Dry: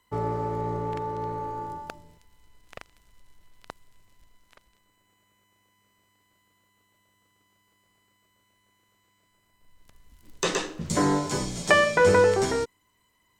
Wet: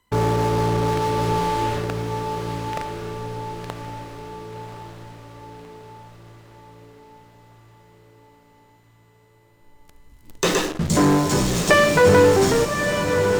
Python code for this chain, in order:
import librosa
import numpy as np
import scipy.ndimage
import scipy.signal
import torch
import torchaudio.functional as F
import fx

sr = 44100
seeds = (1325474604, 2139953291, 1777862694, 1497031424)

p1 = fx.low_shelf(x, sr, hz=400.0, db=5.0)
p2 = fx.fuzz(p1, sr, gain_db=41.0, gate_db=-35.0)
p3 = p1 + F.gain(torch.from_numpy(p2), -10.0).numpy()
y = fx.echo_diffused(p3, sr, ms=1122, feedback_pct=53, wet_db=-6)